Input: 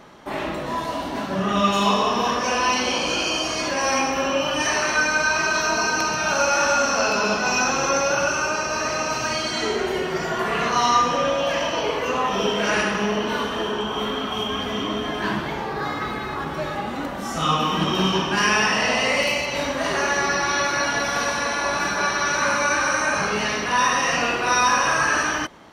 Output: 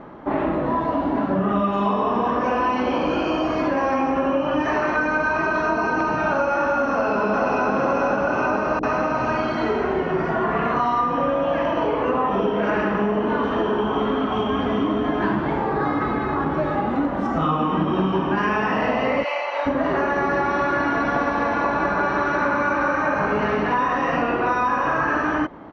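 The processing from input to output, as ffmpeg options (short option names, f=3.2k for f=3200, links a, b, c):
-filter_complex "[0:a]asplit=2[a][b];[b]afade=t=in:st=6.9:d=0.01,afade=t=out:st=7.73:d=0.01,aecho=0:1:430|860|1290|1720|2150|2580|3010|3440|3870|4300|4730:0.944061|0.61364|0.398866|0.259263|0.168521|0.109538|0.0712|0.04628|0.030082|0.0195533|0.0127096[c];[a][c]amix=inputs=2:normalize=0,asettb=1/sr,asplit=3[d][e][f];[d]atrim=end=8.794[g];[e]atrim=start=8.79:end=12.04,asetpts=PTS-STARTPTS,afade=t=in:d=0.004:c=qsin,afade=t=out:st=3.246:d=0.004:c=qsin,acrossover=split=410[h][i];[i]adelay=40[j];[h][j]amix=inputs=2:normalize=0,atrim=end_sample=143325[k];[f]atrim=start=12.036[l];[g][k]acrossfade=d=0.004:c1=hsin:c2=qsin[m];[m][l]acrossfade=d=0.004:c1=qsin:c2=hsin,asettb=1/sr,asplit=3[n][o][p];[n]atrim=end=13.434[q];[o]atrim=start=13.43:end=17.27,asetpts=PTS-STARTPTS,afade=t=in:d=0.004:c=qsin,afade=t=out:st=3.836:d=0.004:c=qsin,aemphasis=mode=production:type=50kf[r];[p]atrim=start=17.266[s];[q][r]acrossfade=d=0.004:c1=hsin:c2=qsin[t];[t][s]acrossfade=d=0.004:c1=qsin:c2=hsin,asplit=3[u][v][w];[u]afade=t=out:st=19.23:d=0.02[x];[v]highpass=f=620:w=0.5412,highpass=f=620:w=1.3066,afade=t=in:st=19.23:d=0.02,afade=t=out:st=19.65:d=0.02[y];[w]afade=t=in:st=19.65:d=0.02[z];[x][y][z]amix=inputs=3:normalize=0,asplit=3[aa][ab][ac];[aa]afade=t=out:st=20.31:d=0.02[ad];[ab]aecho=1:1:191:0.596,afade=t=in:st=20.31:d=0.02,afade=t=out:st=23.98:d=0.02[ae];[ac]afade=t=in:st=23.98:d=0.02[af];[ad][ae][af]amix=inputs=3:normalize=0,lowpass=1.3k,equalizer=f=290:w=4.7:g=6.5,acompressor=threshold=-24dB:ratio=6,volume=6.5dB"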